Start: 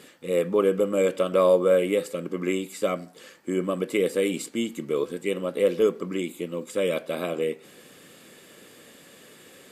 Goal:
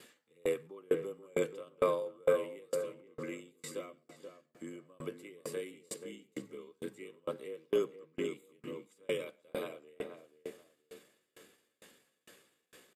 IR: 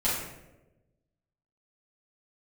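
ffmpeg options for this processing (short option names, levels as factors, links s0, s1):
-filter_complex "[0:a]equalizer=f=100:t=o:w=2.8:g=-10,asplit=2[s0][s1];[s1]aecho=0:1:84|168:0.126|0.0227[s2];[s0][s2]amix=inputs=2:normalize=0,afreqshift=-28,atempo=0.75,asplit=2[s3][s4];[s4]adelay=481,lowpass=f=1600:p=1,volume=0.501,asplit=2[s5][s6];[s6]adelay=481,lowpass=f=1600:p=1,volume=0.31,asplit=2[s7][s8];[s8]adelay=481,lowpass=f=1600:p=1,volume=0.31,asplit=2[s9][s10];[s10]adelay=481,lowpass=f=1600:p=1,volume=0.31[s11];[s5][s7][s9][s11]amix=inputs=4:normalize=0[s12];[s3][s12]amix=inputs=2:normalize=0,aeval=exprs='val(0)*pow(10,-34*if(lt(mod(2.2*n/s,1),2*abs(2.2)/1000),1-mod(2.2*n/s,1)/(2*abs(2.2)/1000),(mod(2.2*n/s,1)-2*abs(2.2)/1000)/(1-2*abs(2.2)/1000))/20)':c=same,volume=0.631"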